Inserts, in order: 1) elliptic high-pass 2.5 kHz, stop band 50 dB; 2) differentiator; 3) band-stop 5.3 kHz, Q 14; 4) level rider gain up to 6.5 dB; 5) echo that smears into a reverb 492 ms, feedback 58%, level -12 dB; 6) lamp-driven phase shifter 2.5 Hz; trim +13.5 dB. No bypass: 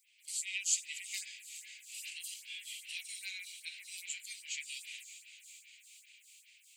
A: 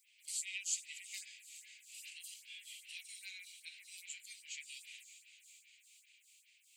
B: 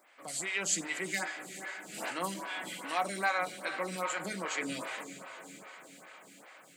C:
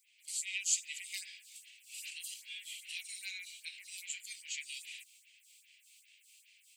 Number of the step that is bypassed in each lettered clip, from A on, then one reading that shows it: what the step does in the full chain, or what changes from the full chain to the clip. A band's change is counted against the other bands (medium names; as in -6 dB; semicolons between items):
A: 4, momentary loudness spread change +1 LU; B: 1, crest factor change -7.0 dB; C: 5, momentary loudness spread change -6 LU